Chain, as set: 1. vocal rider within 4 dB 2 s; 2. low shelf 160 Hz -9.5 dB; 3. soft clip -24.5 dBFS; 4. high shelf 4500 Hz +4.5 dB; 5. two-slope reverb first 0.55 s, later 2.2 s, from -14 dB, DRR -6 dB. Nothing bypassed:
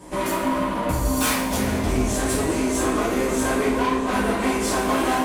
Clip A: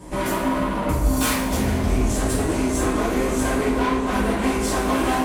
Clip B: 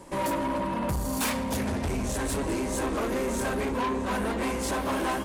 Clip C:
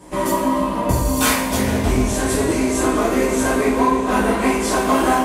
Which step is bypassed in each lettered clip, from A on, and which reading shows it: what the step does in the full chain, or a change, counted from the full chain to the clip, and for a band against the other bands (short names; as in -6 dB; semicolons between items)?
2, 125 Hz band +4.0 dB; 5, crest factor change -5.0 dB; 3, distortion -10 dB